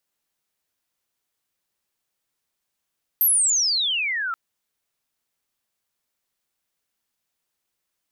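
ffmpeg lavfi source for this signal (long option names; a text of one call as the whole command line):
ffmpeg -f lavfi -i "aevalsrc='pow(10,(-14.5-9.5*t/1.13)/20)*sin(2*PI*13000*1.13/log(1300/13000)*(exp(log(1300/13000)*t/1.13)-1))':duration=1.13:sample_rate=44100" out.wav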